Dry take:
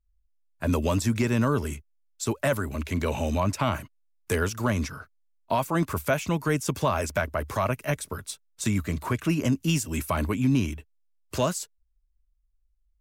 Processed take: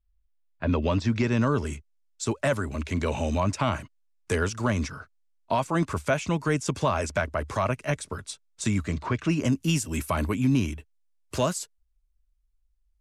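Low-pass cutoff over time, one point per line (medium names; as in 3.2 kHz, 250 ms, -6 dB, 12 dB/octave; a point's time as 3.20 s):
low-pass 24 dB/octave
0.77 s 4 kHz
1.74 s 8.9 kHz
8.87 s 8.9 kHz
9.09 s 5.2 kHz
9.54 s 12 kHz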